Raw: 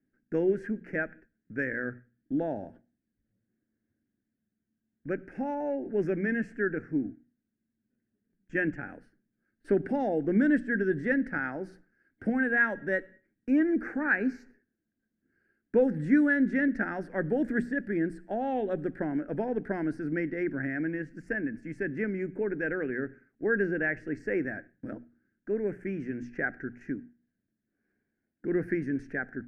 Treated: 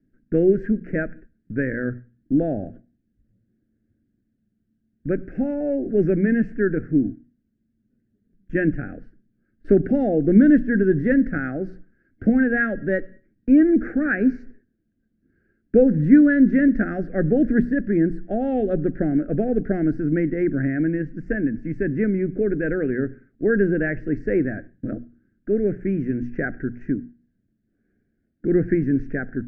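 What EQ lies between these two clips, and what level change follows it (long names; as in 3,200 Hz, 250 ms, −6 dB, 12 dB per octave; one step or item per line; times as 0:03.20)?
Butterworth band-reject 950 Hz, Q 2
high-frequency loss of the air 79 metres
spectral tilt −3 dB per octave
+5.0 dB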